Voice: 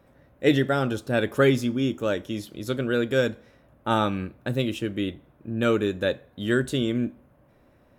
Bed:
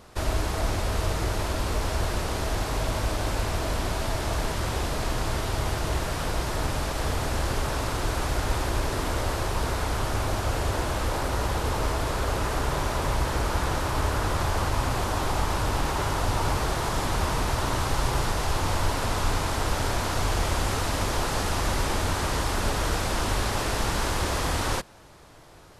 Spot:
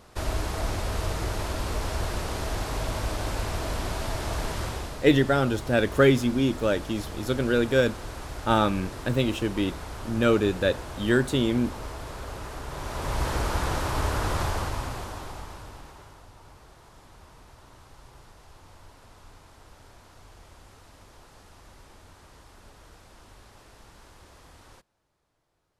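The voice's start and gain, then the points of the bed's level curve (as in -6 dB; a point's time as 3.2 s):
4.60 s, +1.0 dB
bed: 4.62 s -2.5 dB
5.03 s -10.5 dB
12.66 s -10.5 dB
13.25 s -1 dB
14.42 s -1 dB
16.32 s -25.5 dB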